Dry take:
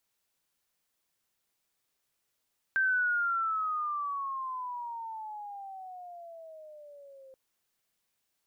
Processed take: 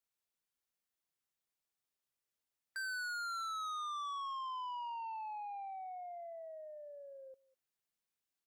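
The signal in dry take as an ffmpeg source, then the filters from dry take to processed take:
-f lavfi -i "aevalsrc='pow(10,(-23.5-26*t/4.58)/20)*sin(2*PI*1570*4.58/(-19*log(2)/12)*(exp(-19*log(2)/12*t/4.58)-1))':d=4.58:s=44100"
-filter_complex "[0:a]afftdn=nr=12:nf=-44,asplit=2[a][b];[b]adelay=200,highpass=300,lowpass=3.4k,asoftclip=type=hard:threshold=-31.5dB,volume=-22dB[c];[a][c]amix=inputs=2:normalize=0,asoftclip=type=tanh:threshold=-39.5dB"

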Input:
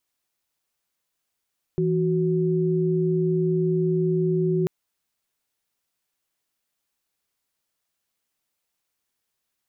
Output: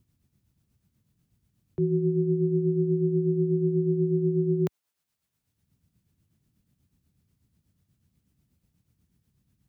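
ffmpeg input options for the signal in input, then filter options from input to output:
-f lavfi -i "aevalsrc='0.0794*(sin(2*PI*164.81*t)+sin(2*PI*369.99*t))':d=2.89:s=44100"
-filter_complex "[0:a]highpass=67,acrossover=split=180|390[a][b][c];[a]acompressor=mode=upward:threshold=-40dB:ratio=2.5[d];[d][b][c]amix=inputs=3:normalize=0,tremolo=f=8.2:d=0.5"

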